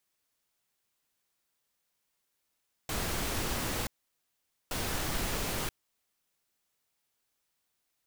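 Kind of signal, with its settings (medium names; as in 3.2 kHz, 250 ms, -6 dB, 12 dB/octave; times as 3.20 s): noise bursts pink, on 0.98 s, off 0.84 s, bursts 2, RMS -33 dBFS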